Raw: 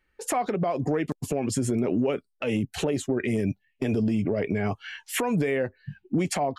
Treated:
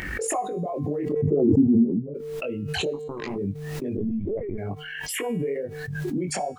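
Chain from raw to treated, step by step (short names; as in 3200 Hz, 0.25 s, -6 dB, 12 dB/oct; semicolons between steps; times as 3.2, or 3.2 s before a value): formant sharpening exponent 2; HPF 67 Hz; upward compressor, threshold -32 dBFS; added noise pink -68 dBFS; 2.93–3.36 power-law curve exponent 3; chorus 2.3 Hz, delay 20 ms, depth 2.7 ms; 1.12–2.14 synth low-pass 480 Hz -> 160 Hz, resonance Q 4.9; resonator 150 Hz, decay 0.78 s, harmonics odd, mix 60%; 3.97–4.58 LPC vocoder at 8 kHz pitch kept; backwards sustainer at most 26 dB/s; gain +6.5 dB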